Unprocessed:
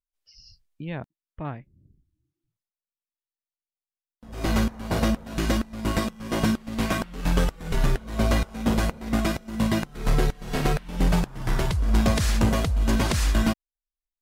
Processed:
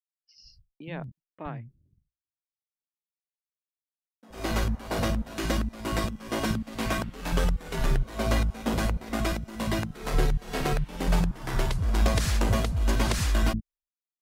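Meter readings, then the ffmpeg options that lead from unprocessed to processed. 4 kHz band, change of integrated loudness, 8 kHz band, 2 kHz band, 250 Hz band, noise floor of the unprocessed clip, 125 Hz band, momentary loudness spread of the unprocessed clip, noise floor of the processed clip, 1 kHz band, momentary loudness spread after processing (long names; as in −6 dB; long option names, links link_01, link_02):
−2.0 dB, −3.0 dB, −2.0 dB, −2.0 dB, −5.5 dB, below −85 dBFS, −3.0 dB, 13 LU, below −85 dBFS, −2.0 dB, 13 LU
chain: -filter_complex "[0:a]agate=range=-33dB:threshold=-50dB:ratio=3:detection=peak,acrossover=split=210[link_01][link_02];[link_01]adelay=70[link_03];[link_03][link_02]amix=inputs=2:normalize=0,volume=-2dB"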